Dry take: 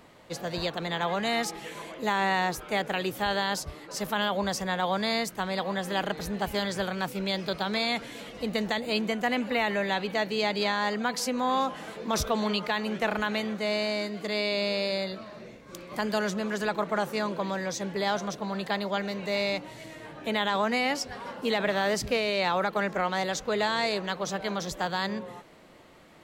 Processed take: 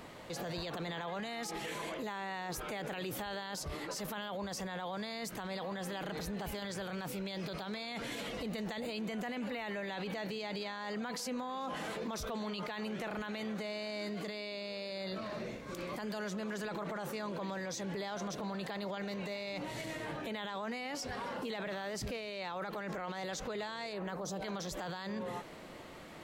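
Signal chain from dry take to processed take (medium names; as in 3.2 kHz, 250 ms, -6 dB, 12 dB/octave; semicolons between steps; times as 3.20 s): 23.92–24.41 s: peaking EQ 7.2 kHz -> 1.6 kHz -14.5 dB 1.4 oct; peak limiter -36 dBFS, peak gain reduction 19 dB; trim +4 dB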